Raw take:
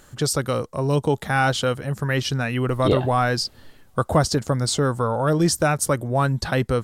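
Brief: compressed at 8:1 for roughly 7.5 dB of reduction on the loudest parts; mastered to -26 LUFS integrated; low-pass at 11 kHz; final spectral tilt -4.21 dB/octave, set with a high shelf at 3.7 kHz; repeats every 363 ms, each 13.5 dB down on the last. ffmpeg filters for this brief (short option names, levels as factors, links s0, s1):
-af "lowpass=11000,highshelf=f=3700:g=7,acompressor=threshold=0.0891:ratio=8,aecho=1:1:363|726:0.211|0.0444,volume=0.944"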